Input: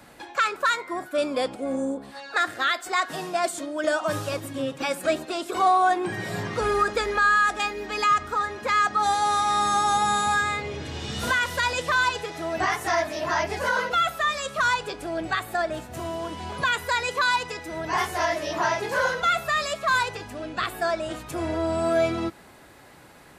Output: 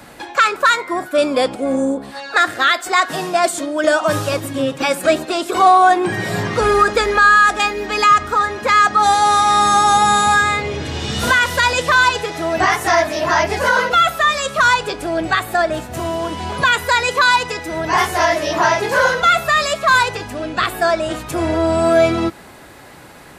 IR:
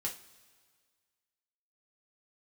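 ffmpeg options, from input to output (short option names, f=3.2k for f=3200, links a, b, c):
-af "acontrast=27,volume=4.5dB"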